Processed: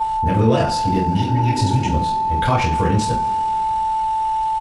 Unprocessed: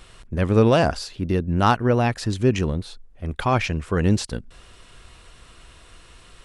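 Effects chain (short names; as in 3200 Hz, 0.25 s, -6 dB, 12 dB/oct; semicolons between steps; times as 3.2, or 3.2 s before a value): whine 880 Hz -26 dBFS; compressor 6:1, threshold -21 dBFS, peak gain reduction 10.5 dB; two-slope reverb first 0.48 s, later 4.2 s, from -22 dB, DRR -7 dB; tempo 1.4×; spectral repair 1.17–1.91, 200–1800 Hz before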